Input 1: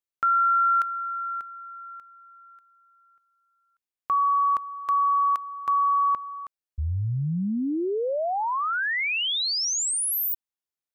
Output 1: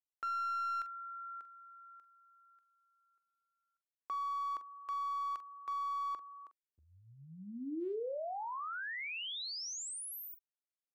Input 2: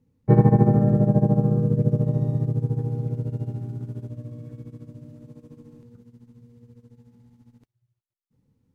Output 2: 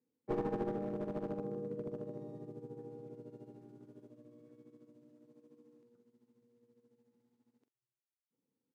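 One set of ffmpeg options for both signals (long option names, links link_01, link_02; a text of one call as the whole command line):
ffmpeg -i in.wav -filter_complex "[0:a]bandpass=frequency=330:width_type=q:width=1.5:csg=0,aderivative,aeval=exprs='clip(val(0),-1,0.00335)':channel_layout=same,asplit=2[link_01][link_02];[link_02]adelay=44,volume=-12dB[link_03];[link_01][link_03]amix=inputs=2:normalize=0,volume=14.5dB" out.wav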